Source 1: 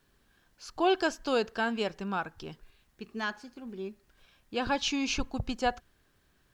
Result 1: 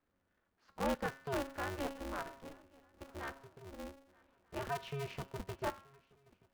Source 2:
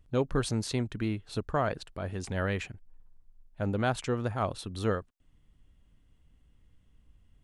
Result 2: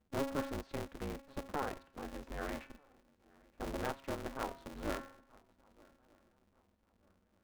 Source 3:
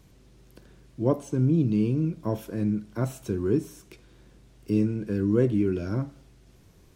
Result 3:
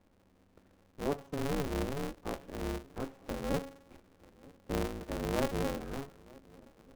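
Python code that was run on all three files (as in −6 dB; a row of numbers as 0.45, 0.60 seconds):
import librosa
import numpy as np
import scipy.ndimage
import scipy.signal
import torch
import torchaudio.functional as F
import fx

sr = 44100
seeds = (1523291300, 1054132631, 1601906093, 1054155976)

p1 = scipy.signal.sosfilt(scipy.signal.butter(4, 45.0, 'highpass', fs=sr, output='sos'), x)
p2 = fx.echo_swing(p1, sr, ms=1235, ratio=3, feedback_pct=31, wet_db=-24)
p3 = fx.dynamic_eq(p2, sr, hz=130.0, q=1.4, threshold_db=-38.0, ratio=4.0, max_db=-5)
p4 = scipy.signal.sosfilt(scipy.signal.butter(2, 1700.0, 'lowpass', fs=sr, output='sos'), p3)
p5 = fx.comb_fb(p4, sr, f0_hz=410.0, decay_s=0.74, harmonics='all', damping=0.0, mix_pct=80)
p6 = np.where(np.abs(p5) >= 10.0 ** (-55.0 / 20.0), p5, 0.0)
p7 = p5 + (p6 * librosa.db_to_amplitude(-12.0))
p8 = p7 * np.sign(np.sin(2.0 * np.pi * 140.0 * np.arange(len(p7)) / sr))
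y = p8 * librosa.db_to_amplitude(2.5)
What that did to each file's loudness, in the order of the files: −10.0, −9.5, −10.5 LU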